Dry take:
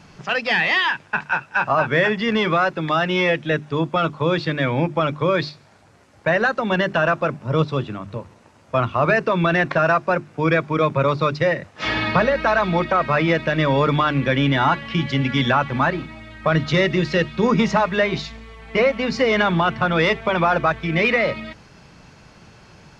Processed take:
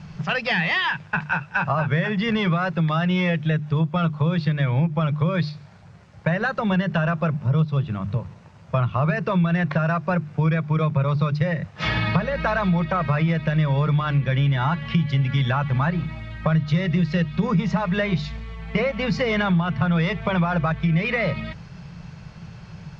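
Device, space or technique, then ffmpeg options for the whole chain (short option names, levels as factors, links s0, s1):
jukebox: -af "lowpass=5900,lowshelf=f=210:t=q:w=3:g=7,acompressor=threshold=0.112:ratio=4"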